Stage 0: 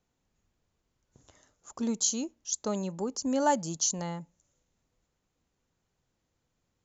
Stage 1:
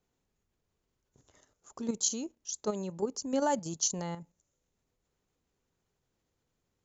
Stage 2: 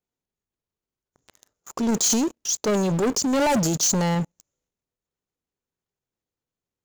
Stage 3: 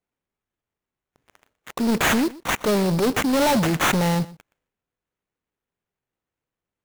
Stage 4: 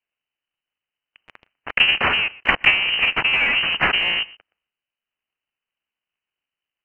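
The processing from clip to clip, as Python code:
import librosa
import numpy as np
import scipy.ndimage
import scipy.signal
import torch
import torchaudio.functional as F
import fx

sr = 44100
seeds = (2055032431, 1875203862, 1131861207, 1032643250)

y1 = fx.peak_eq(x, sr, hz=410.0, db=5.5, octaves=0.31)
y1 = fx.level_steps(y1, sr, step_db=9)
y2 = fx.transient(y1, sr, attack_db=-2, sustain_db=8)
y2 = fx.low_shelf(y2, sr, hz=79.0, db=-5.5)
y2 = fx.leveller(y2, sr, passes=5)
y3 = fx.sample_hold(y2, sr, seeds[0], rate_hz=4800.0, jitter_pct=20)
y3 = y3 + 10.0 ** (-20.0 / 20.0) * np.pad(y3, (int(121 * sr / 1000.0), 0))[:len(y3)]
y3 = y3 * 10.0 ** (1.5 / 20.0)
y4 = fx.cycle_switch(y3, sr, every=3, mode='inverted')
y4 = fx.freq_invert(y4, sr, carrier_hz=3000)
y4 = fx.transient(y4, sr, attack_db=12, sustain_db=-1)
y4 = y4 * 10.0 ** (-1.0 / 20.0)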